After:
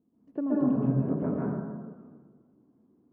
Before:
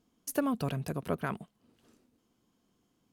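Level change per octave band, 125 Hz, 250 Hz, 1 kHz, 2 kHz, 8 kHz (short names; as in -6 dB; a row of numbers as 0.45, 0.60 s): +6.5 dB, +8.5 dB, -3.5 dB, -10.0 dB, under -35 dB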